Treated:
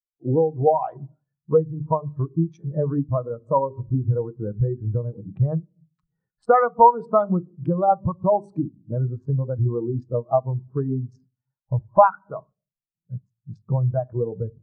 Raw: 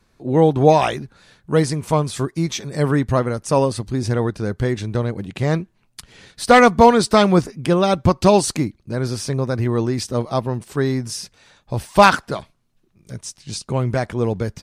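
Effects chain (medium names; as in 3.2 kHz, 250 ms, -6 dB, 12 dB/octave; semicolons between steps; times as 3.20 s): local Wiener filter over 15 samples; hum notches 50/100/150/200/250/300/350/400/450 Hz; simulated room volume 1900 m³, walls furnished, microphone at 0.59 m; compression 12:1, threshold -24 dBFS, peak gain reduction 19 dB; peaking EQ 1.1 kHz +8 dB 1.6 oct; spectral contrast expander 2.5:1; trim +6 dB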